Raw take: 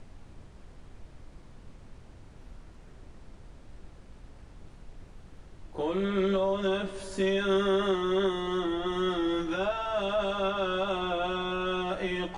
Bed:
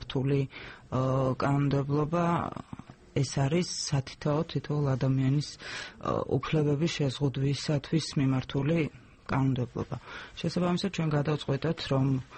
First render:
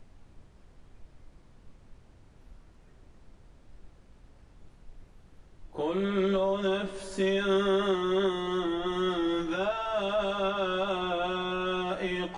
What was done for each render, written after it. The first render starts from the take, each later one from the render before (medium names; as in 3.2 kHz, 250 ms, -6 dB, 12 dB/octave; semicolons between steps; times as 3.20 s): noise print and reduce 6 dB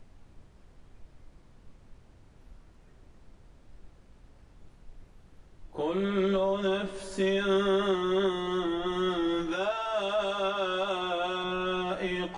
9.52–11.44 s: tone controls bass -8 dB, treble +4 dB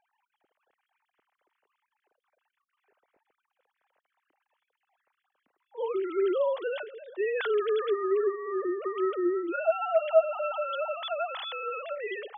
formants replaced by sine waves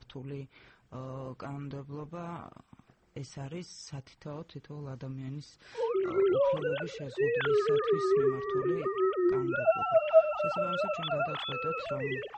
add bed -13.5 dB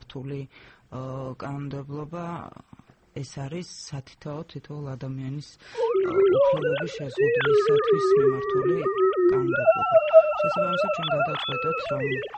trim +7 dB